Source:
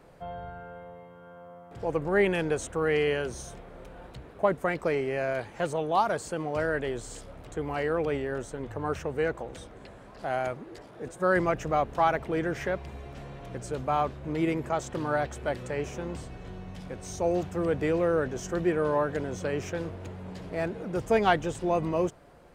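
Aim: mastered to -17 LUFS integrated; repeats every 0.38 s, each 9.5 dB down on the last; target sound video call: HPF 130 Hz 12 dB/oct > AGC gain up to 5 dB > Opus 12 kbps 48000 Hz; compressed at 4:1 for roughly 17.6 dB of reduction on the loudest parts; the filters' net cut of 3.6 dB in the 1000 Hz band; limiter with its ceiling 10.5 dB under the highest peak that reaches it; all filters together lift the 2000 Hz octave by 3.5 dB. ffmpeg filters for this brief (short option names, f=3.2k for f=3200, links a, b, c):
-af "equalizer=f=1k:t=o:g=-7,equalizer=f=2k:t=o:g=7,acompressor=threshold=-41dB:ratio=4,alimiter=level_in=11.5dB:limit=-24dB:level=0:latency=1,volume=-11.5dB,highpass=130,aecho=1:1:380|760|1140|1520:0.335|0.111|0.0365|0.012,dynaudnorm=m=5dB,volume=27.5dB" -ar 48000 -c:a libopus -b:a 12k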